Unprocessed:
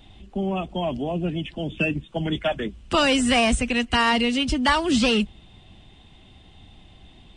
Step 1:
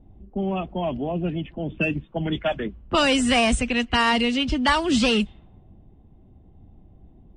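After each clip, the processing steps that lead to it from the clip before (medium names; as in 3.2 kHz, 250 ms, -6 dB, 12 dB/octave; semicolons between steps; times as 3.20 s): level-controlled noise filter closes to 450 Hz, open at -16.5 dBFS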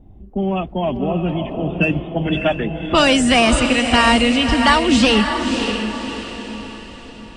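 echo that smears into a reverb 584 ms, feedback 45%, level -6 dB; trim +5.5 dB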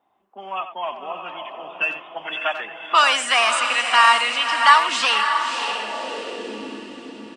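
speakerphone echo 90 ms, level -10 dB; high-pass sweep 1.1 kHz -> 300 Hz, 5.47–6.74 s; trim -3 dB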